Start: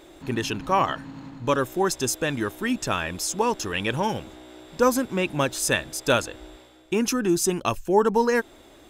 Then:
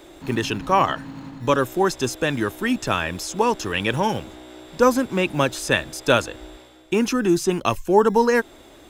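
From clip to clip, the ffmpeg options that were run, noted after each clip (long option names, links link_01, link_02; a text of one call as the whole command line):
ffmpeg -i in.wav -filter_complex "[0:a]acrossover=split=130|1300|1800[link_01][link_02][link_03][link_04];[link_01]acrusher=samples=34:mix=1:aa=0.000001:lfo=1:lforange=20.4:lforate=1.2[link_05];[link_05][link_02][link_03][link_04]amix=inputs=4:normalize=0,acrossover=split=4500[link_06][link_07];[link_07]acompressor=threshold=-35dB:ratio=4:attack=1:release=60[link_08];[link_06][link_08]amix=inputs=2:normalize=0,volume=3.5dB" out.wav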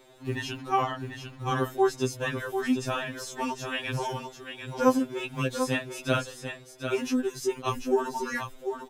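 ffmpeg -i in.wav -af "aecho=1:1:743:0.422,afftfilt=real='re*2.45*eq(mod(b,6),0)':imag='im*2.45*eq(mod(b,6),0)':win_size=2048:overlap=0.75,volume=-6.5dB" out.wav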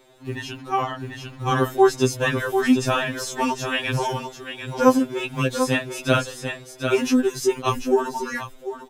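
ffmpeg -i in.wav -af "dynaudnorm=framelen=300:gausssize=9:maxgain=8dB,volume=1dB" out.wav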